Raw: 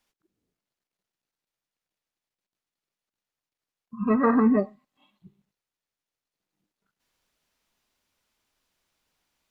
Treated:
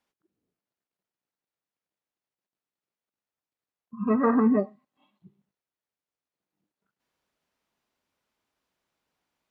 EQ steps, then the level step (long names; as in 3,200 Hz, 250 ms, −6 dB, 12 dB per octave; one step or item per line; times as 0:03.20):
high-pass filter 130 Hz 6 dB per octave
high-shelf EQ 2,200 Hz −9.5 dB
0.0 dB